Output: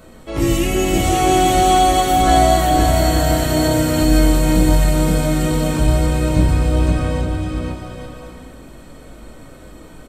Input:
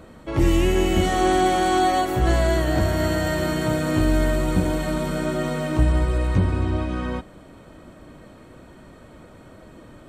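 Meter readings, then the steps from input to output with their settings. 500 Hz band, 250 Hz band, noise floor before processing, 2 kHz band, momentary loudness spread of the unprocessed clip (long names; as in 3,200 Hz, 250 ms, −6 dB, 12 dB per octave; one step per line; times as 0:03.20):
+4.5 dB, +5.5 dB, −46 dBFS, +3.0 dB, 6 LU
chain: high-shelf EQ 4,400 Hz +11.5 dB
on a send: bouncing-ball delay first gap 520 ms, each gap 0.65×, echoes 5
on the sum: rectangular room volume 120 cubic metres, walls furnished, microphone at 1.5 metres
level −2 dB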